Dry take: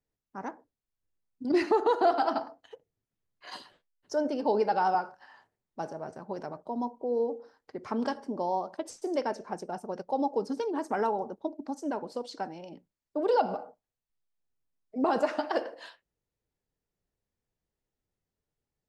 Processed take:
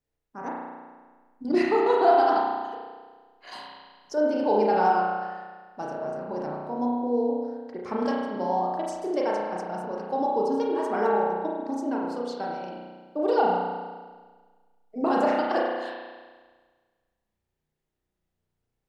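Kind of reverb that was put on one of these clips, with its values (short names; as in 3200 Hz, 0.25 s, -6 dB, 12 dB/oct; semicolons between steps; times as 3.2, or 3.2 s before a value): spring tank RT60 1.5 s, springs 33 ms, chirp 20 ms, DRR -3.5 dB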